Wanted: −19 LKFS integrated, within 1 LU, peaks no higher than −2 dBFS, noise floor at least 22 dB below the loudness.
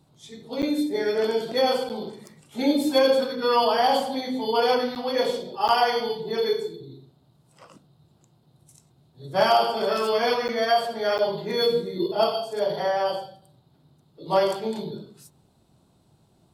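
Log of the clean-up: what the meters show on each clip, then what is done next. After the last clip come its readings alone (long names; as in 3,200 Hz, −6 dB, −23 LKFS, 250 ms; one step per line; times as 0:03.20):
number of dropouts 6; longest dropout 8.7 ms; integrated loudness −24.0 LKFS; sample peak −10.0 dBFS; target loudness −19.0 LKFS
→ repair the gap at 0:00.62/0:01.89/0:04.95/0:05.68/0:10.48/0:11.18, 8.7 ms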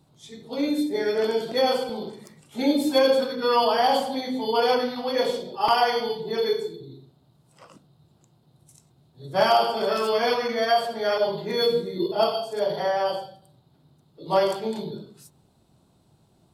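number of dropouts 0; integrated loudness −24.0 LKFS; sample peak −10.0 dBFS; target loudness −19.0 LKFS
→ level +5 dB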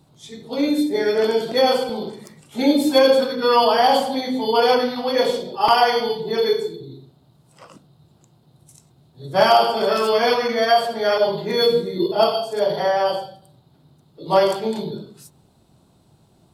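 integrated loudness −19.0 LKFS; sample peak −5.0 dBFS; background noise floor −57 dBFS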